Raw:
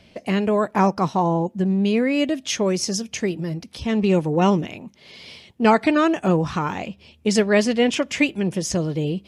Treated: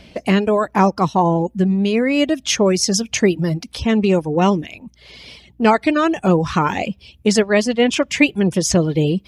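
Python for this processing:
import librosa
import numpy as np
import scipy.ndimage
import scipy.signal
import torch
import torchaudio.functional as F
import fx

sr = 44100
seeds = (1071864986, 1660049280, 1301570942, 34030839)

y = fx.rider(x, sr, range_db=4, speed_s=0.5)
y = fx.add_hum(y, sr, base_hz=60, snr_db=34)
y = fx.dereverb_blind(y, sr, rt60_s=0.61)
y = y * 10.0 ** (5.0 / 20.0)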